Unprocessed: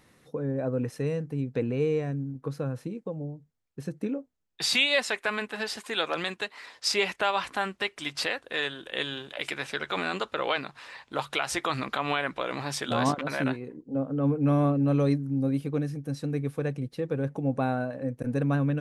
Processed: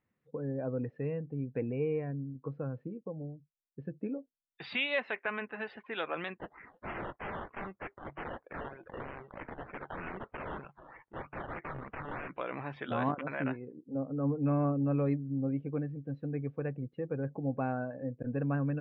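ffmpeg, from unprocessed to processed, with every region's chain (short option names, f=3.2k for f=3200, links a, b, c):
-filter_complex "[0:a]asettb=1/sr,asplit=3[a][b][c];[a]atrim=end=6.384[d];[b]atrim=start=6.38:end=12.3,asetpts=PTS-STARTPTS,afade=t=in:d=0.004:c=qsin,afade=t=out:st=5.916:d=0.004:c=qsin,equalizer=f=260:w=2.8:g=-11,acrusher=samples=15:mix=1:aa=0.000001:lfo=1:lforange=9:lforate=3.2,aeval=exprs='(mod(23.7*val(0)+1,2)-1)/23.7':c=same[e];[c]atrim=start=12.296[f];[d][e]acrossfade=d=0.004:c1=hsin:c2=qsin[g];[g][f]acrossfade=d=0.004:c1=qsin:c2=hsin,lowpass=f=2.8k:w=0.5412,lowpass=f=2.8k:w=1.3066,afftdn=nr=17:nf=-46,volume=-6dB"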